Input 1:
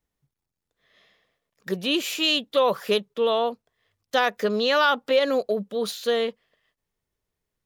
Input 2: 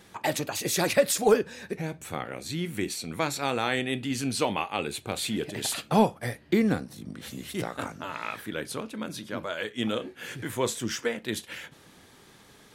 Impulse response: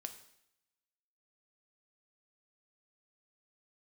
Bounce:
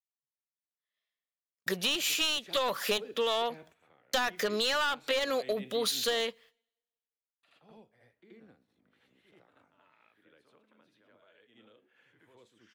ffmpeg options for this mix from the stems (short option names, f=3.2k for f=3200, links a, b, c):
-filter_complex "[0:a]agate=range=-35dB:threshold=-53dB:ratio=16:detection=peak,tiltshelf=f=830:g=-7,aeval=exprs='clip(val(0),-1,0.112)':c=same,volume=1dB,asplit=3[a][b][c];[b]volume=-22dB[d];[1:a]acrossover=split=410 3000:gain=0.178 1 0.0794[e][f][g];[e][f][g]amix=inputs=3:normalize=0,acrossover=split=390|3000[h][i][j];[i]acompressor=threshold=-44dB:ratio=6[k];[h][k][j]amix=inputs=3:normalize=0,adelay=1700,volume=-6.5dB,asplit=3[l][m][n];[l]atrim=end=6.21,asetpts=PTS-STARTPTS,afade=t=out:st=6.206:d=0.004:c=hsin[o];[m]atrim=start=6.21:end=7.43,asetpts=PTS-STARTPTS,volume=0[p];[n]atrim=start=7.43,asetpts=PTS-STARTPTS,afade=t=in:d=0.004:c=hsin[q];[o][p][q]concat=n=3:v=0:a=1,asplit=3[r][s][t];[s]volume=-19dB[u];[t]volume=-16dB[v];[c]apad=whole_len=636984[w];[r][w]sidechaingate=range=-33dB:threshold=-54dB:ratio=16:detection=peak[x];[2:a]atrim=start_sample=2205[y];[d][u]amix=inputs=2:normalize=0[z];[z][y]afir=irnorm=-1:irlink=0[aa];[v]aecho=0:1:78:1[ab];[a][x][aa][ab]amix=inputs=4:normalize=0,acompressor=threshold=-27dB:ratio=6"